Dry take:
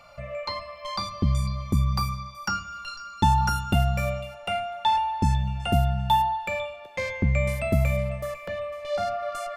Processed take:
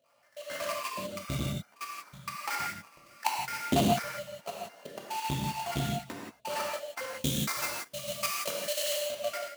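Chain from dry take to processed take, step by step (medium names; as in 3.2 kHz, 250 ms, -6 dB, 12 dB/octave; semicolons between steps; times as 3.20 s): random holes in the spectrogram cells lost 78%; tape spacing loss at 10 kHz 31 dB; band-stop 2.6 kHz, Q 23; sample-rate reducer 3.6 kHz, jitter 20%; 1.10–1.58 s: comb 1.4 ms, depth 80%; level held to a coarse grid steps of 23 dB; 7.11–8.93 s: treble shelf 2.6 kHz +11.5 dB; gated-style reverb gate 200 ms flat, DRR -2.5 dB; level rider gain up to 16 dB; saturation -7 dBFS, distortion -15 dB; high-pass 260 Hz 12 dB/octave; trim -3.5 dB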